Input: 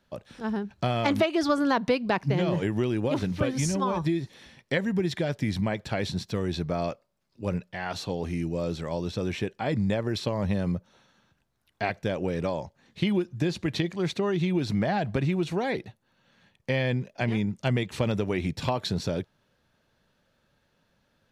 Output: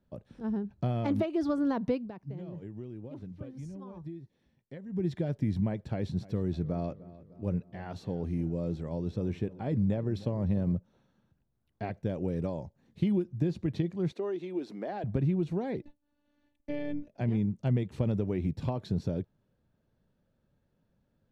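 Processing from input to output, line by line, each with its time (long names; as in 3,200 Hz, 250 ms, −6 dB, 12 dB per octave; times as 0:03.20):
0:01.95–0:05.05: duck −13 dB, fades 0.16 s
0:05.86–0:10.77: feedback echo with a low-pass in the loop 302 ms, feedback 53%, low-pass 3,400 Hz, level −18 dB
0:12.09–0:13.24: high-shelf EQ 8,400 Hz +11 dB
0:14.12–0:15.04: high-pass filter 310 Hz 24 dB per octave
0:15.82–0:17.08: phases set to zero 293 Hz
whole clip: tilt shelving filter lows +9 dB, about 710 Hz; level −9 dB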